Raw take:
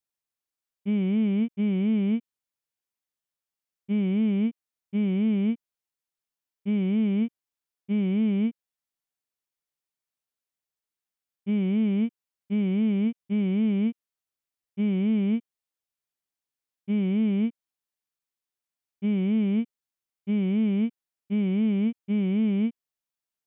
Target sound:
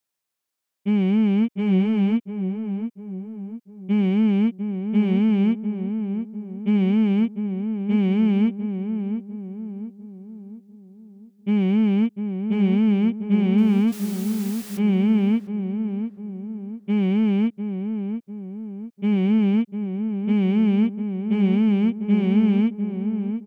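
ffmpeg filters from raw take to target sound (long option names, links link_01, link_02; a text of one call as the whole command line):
ffmpeg -i in.wav -filter_complex "[0:a]asettb=1/sr,asplit=3[link_01][link_02][link_03];[link_01]atrim=end=13.584[link_04];[link_02]atrim=start=13.58:end=14.79,asetpts=PTS-STARTPTS,afade=type=in:duration=0.004:curve=qsin,afade=type=out:start_time=1.206:duration=0.004:curve=qsin,aeval=exprs='val(0)+0.5*0.0106*sgn(val(0))':channel_layout=same[link_05];[link_03]atrim=start=14.786[link_06];[link_04][link_05]acrossfade=duration=0.004:curve1=hsin:curve2=qsin[link_07];[link_07][link_06]acrossfade=duration=0.004:curve1=qsin:curve2=hsin,highpass=67,equalizer=frequency=100:width_type=o:width=1.8:gain=-3.5,asplit=2[link_08][link_09];[link_09]volume=25.5dB,asoftclip=hard,volume=-25.5dB,volume=-3.5dB[link_10];[link_08][link_10]amix=inputs=2:normalize=0,asplit=2[link_11][link_12];[link_12]adelay=699,lowpass=frequency=1100:poles=1,volume=-7dB,asplit=2[link_13][link_14];[link_14]adelay=699,lowpass=frequency=1100:poles=1,volume=0.48,asplit=2[link_15][link_16];[link_16]adelay=699,lowpass=frequency=1100:poles=1,volume=0.48,asplit=2[link_17][link_18];[link_18]adelay=699,lowpass=frequency=1100:poles=1,volume=0.48,asplit=2[link_19][link_20];[link_20]adelay=699,lowpass=frequency=1100:poles=1,volume=0.48,asplit=2[link_21][link_22];[link_22]adelay=699,lowpass=frequency=1100:poles=1,volume=0.48[link_23];[link_11][link_13][link_15][link_17][link_19][link_21][link_23]amix=inputs=7:normalize=0,volume=3dB" out.wav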